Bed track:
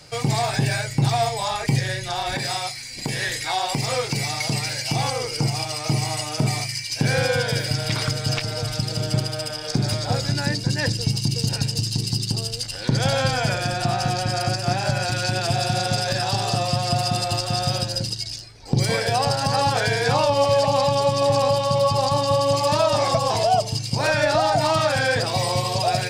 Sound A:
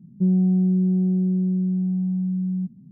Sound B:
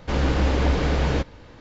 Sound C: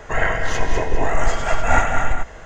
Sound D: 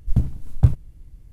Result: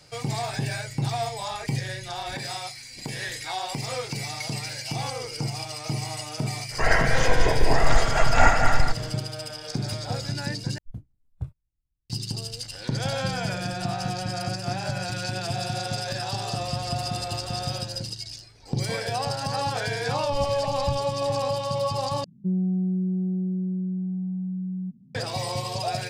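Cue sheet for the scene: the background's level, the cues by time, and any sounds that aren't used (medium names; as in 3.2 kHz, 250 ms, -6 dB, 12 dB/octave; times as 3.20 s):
bed track -7 dB
6.69 s: add C -1 dB, fades 0.05 s
10.78 s: replace with D -18 dB + spectral noise reduction 20 dB
13.02 s: add A -18 dB
16.51 s: add B -11.5 dB + compression, threshold -31 dBFS
20.24 s: add D -13.5 dB
22.24 s: replace with A -6 dB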